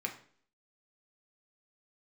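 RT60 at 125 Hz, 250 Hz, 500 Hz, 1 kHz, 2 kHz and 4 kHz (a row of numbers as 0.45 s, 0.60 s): 0.50 s, 0.60 s, 0.55 s, 0.50 s, 0.50 s, 0.50 s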